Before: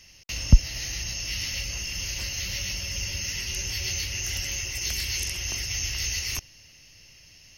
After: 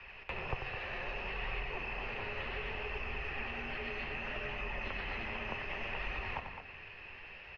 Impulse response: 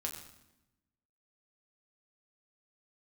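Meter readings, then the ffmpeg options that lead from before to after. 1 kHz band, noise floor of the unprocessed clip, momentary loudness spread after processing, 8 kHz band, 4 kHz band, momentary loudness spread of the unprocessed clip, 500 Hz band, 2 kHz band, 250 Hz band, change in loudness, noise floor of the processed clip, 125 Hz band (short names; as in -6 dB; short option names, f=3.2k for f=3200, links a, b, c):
+8.5 dB, -53 dBFS, 8 LU, under -40 dB, -17.5 dB, 8 LU, +5.0 dB, -4.0 dB, -10.5 dB, -12.0 dB, -51 dBFS, -17.0 dB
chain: -filter_complex "[0:a]highpass=f=160:t=q:w=0.5412,highpass=f=160:t=q:w=1.307,lowpass=f=2.8k:t=q:w=0.5176,lowpass=f=2.8k:t=q:w=0.7071,lowpass=f=2.8k:t=q:w=1.932,afreqshift=-140,asplit=2[a][b];[1:a]atrim=start_sample=2205[c];[b][c]afir=irnorm=-1:irlink=0,volume=-7dB[d];[a][d]amix=inputs=2:normalize=0,acrossover=split=250|960[e][f][g];[e]acompressor=threshold=-50dB:ratio=4[h];[f]acompressor=threshold=-52dB:ratio=4[i];[g]acompressor=threshold=-50dB:ratio=4[j];[h][i][j]amix=inputs=3:normalize=0,flanger=delay=0.8:depth=8.9:regen=64:speed=0.65:shape=sinusoidal,equalizer=f=125:t=o:w=1:g=-3,equalizer=f=250:t=o:w=1:g=-10,equalizer=f=1k:t=o:w=1:g=6,equalizer=f=2k:t=o:w=1:g=-6,asplit=2[k][l];[l]aecho=0:1:93|211:0.398|0.376[m];[k][m]amix=inputs=2:normalize=0,volume=13dB"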